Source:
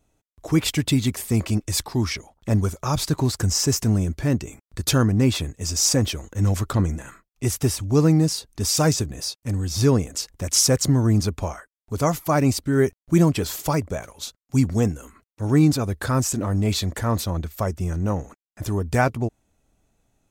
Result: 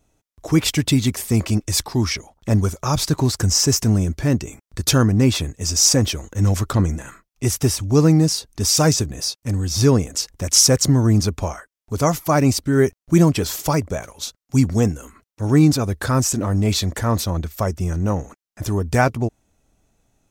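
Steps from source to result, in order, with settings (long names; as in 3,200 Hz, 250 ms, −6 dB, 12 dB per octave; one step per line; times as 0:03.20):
parametric band 5,700 Hz +3.5 dB 0.38 octaves
level +3 dB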